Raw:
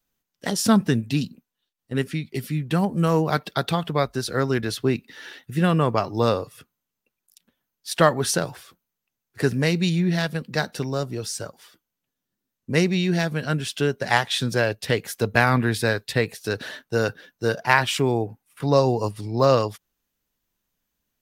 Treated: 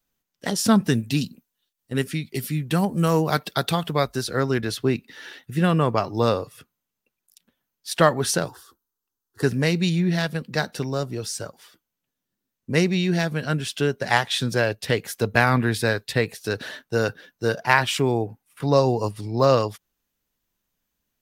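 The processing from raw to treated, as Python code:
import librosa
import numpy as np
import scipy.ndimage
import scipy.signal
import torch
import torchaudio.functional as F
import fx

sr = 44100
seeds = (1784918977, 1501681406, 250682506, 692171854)

y = fx.high_shelf(x, sr, hz=5300.0, db=8.5, at=(0.84, 4.23))
y = fx.fixed_phaser(y, sr, hz=620.0, stages=6, at=(8.48, 9.43))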